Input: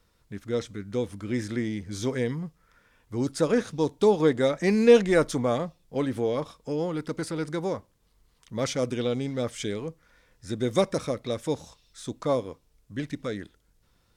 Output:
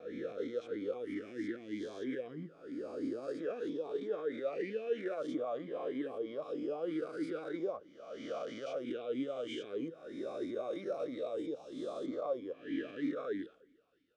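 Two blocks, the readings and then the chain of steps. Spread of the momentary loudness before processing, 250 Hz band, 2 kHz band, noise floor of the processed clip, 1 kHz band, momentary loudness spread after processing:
15 LU, -11.0 dB, -13.0 dB, -61 dBFS, -12.0 dB, 5 LU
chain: spectral swells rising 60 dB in 1.22 s; compressor 2.5:1, threshold -36 dBFS, peak gain reduction 16.5 dB; limiter -30.5 dBFS, peak gain reduction 9.5 dB; expander -55 dBFS; spring tank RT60 1.5 s, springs 31/37 ms, chirp 75 ms, DRR 19.5 dB; vowel sweep a-i 3.1 Hz; gain +10 dB

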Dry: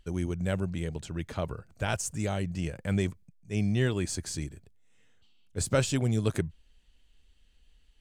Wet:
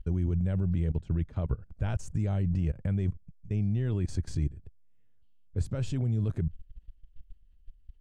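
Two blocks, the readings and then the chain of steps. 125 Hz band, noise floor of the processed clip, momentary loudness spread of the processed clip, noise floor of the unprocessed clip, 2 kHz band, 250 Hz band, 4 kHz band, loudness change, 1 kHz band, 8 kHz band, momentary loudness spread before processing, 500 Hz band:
+3.0 dB, -58 dBFS, 6 LU, -63 dBFS, -12.5 dB, -1.5 dB, -13.5 dB, 0.0 dB, -9.5 dB, -16.0 dB, 10 LU, -7.5 dB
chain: level quantiser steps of 19 dB; RIAA curve playback

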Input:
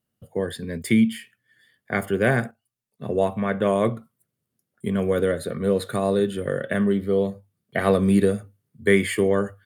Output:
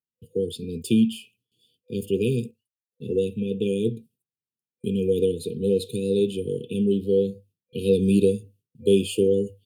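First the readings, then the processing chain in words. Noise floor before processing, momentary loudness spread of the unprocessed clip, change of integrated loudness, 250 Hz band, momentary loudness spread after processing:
-82 dBFS, 11 LU, -1.0 dB, -1.0 dB, 12 LU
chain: gate with hold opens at -51 dBFS; FFT band-reject 500–2400 Hz; bell 1200 Hz +14.5 dB 1.5 oct; gain -2 dB

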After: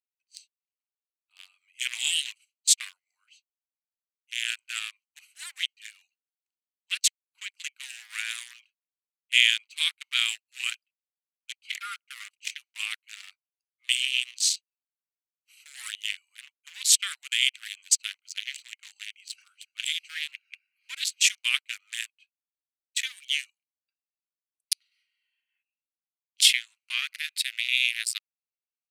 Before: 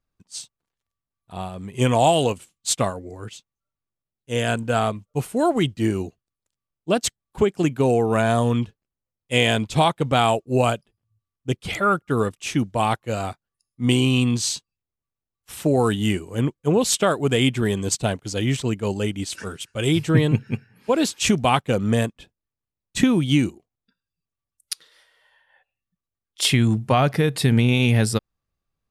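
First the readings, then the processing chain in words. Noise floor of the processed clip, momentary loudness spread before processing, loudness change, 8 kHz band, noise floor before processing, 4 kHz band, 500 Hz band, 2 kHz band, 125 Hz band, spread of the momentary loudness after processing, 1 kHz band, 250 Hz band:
under -85 dBFS, 14 LU, -5.0 dB, +1.5 dB, under -85 dBFS, +2.0 dB, under -40 dB, -0.5 dB, under -40 dB, 20 LU, -27.0 dB, under -40 dB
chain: Wiener smoothing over 25 samples; steep high-pass 2000 Hz 36 dB/oct; gain +4 dB

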